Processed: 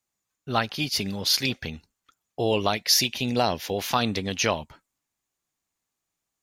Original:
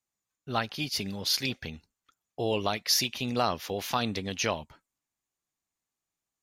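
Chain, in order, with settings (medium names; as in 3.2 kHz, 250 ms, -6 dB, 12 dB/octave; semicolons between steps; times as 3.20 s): 2.75–3.75 s: peaking EQ 1.2 kHz -12.5 dB 0.25 oct; trim +5 dB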